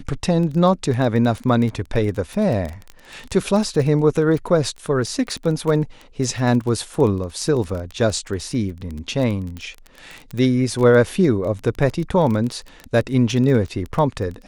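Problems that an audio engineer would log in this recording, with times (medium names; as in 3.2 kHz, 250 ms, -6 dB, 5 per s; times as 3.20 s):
crackle 17 per s -24 dBFS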